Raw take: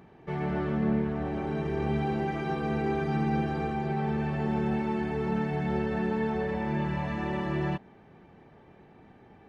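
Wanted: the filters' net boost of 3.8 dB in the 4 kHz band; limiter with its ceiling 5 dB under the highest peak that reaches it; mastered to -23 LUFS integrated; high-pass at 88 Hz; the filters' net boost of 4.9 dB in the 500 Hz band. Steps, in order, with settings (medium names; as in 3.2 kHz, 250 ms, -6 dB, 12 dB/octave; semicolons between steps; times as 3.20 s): high-pass 88 Hz; peaking EQ 500 Hz +6.5 dB; peaking EQ 4 kHz +5 dB; trim +6.5 dB; peak limiter -14 dBFS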